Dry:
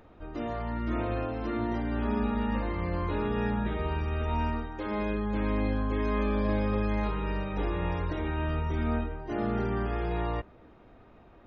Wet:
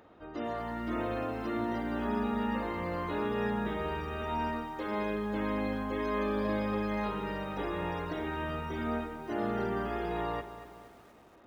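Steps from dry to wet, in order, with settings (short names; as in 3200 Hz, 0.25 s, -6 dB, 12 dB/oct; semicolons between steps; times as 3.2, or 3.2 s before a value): HPF 250 Hz 6 dB/oct; notch 2400 Hz, Q 14; lo-fi delay 0.236 s, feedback 55%, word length 9-bit, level -12 dB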